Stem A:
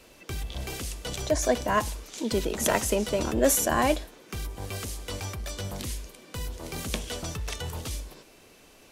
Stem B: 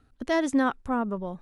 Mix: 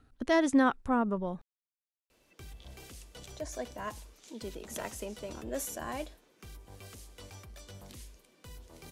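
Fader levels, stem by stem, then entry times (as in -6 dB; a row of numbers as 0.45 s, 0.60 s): -14.5 dB, -1.0 dB; 2.10 s, 0.00 s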